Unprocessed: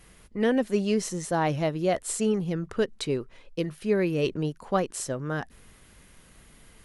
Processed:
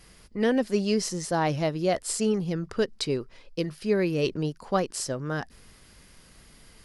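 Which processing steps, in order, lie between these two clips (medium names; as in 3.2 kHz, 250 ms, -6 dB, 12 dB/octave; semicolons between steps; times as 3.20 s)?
peaking EQ 4.9 kHz +10 dB 0.37 oct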